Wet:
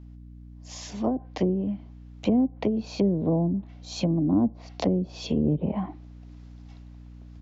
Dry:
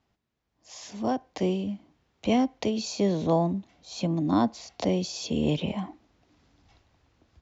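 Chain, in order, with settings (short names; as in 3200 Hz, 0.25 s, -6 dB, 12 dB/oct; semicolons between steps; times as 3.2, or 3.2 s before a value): treble ducked by the level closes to 380 Hz, closed at -22 dBFS; hum 60 Hz, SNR 17 dB; gain +3 dB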